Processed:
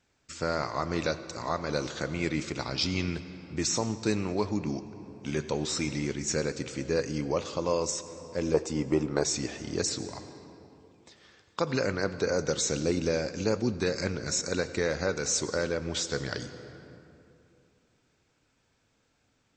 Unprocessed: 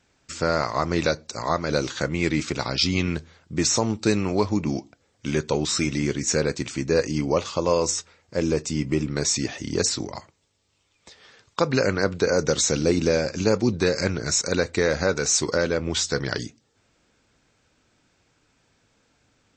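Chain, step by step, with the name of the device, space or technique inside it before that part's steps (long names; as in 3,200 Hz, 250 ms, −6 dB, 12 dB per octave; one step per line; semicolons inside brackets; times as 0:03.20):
0:08.54–0:09.24: drawn EQ curve 200 Hz 0 dB, 810 Hz +14 dB, 2,200 Hz −1 dB
compressed reverb return (on a send at −8 dB: convolution reverb RT60 2.6 s, pre-delay 80 ms + downward compressor, threshold −24 dBFS, peak gain reduction 9.5 dB)
on the sum: level −7 dB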